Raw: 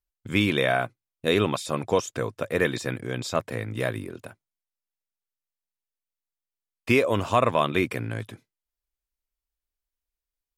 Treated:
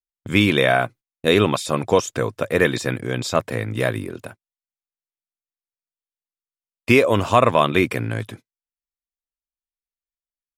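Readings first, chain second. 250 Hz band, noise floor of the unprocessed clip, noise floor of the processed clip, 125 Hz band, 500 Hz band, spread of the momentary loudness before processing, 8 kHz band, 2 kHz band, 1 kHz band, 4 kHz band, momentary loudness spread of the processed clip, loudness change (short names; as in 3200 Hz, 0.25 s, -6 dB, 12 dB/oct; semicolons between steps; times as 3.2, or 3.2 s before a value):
+6.0 dB, under -85 dBFS, under -85 dBFS, +6.0 dB, +6.0 dB, 14 LU, +6.0 dB, +6.0 dB, +6.0 dB, +6.0 dB, 14 LU, +6.0 dB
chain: gate -45 dBFS, range -21 dB; gain +6 dB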